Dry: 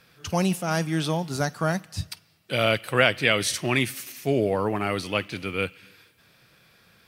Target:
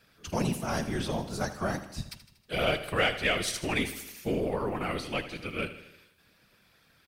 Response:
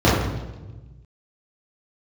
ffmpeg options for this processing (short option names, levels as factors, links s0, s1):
-af "afftfilt=real='hypot(re,im)*cos(2*PI*random(0))':imag='hypot(re,im)*sin(2*PI*random(1))':win_size=512:overlap=0.75,aeval=exprs='0.211*(cos(1*acos(clip(val(0)/0.211,-1,1)))-cos(1*PI/2))+0.00422*(cos(8*acos(clip(val(0)/0.211,-1,1)))-cos(8*PI/2))':c=same,aecho=1:1:79|158|237|316|395|474:0.224|0.123|0.0677|0.0372|0.0205|0.0113"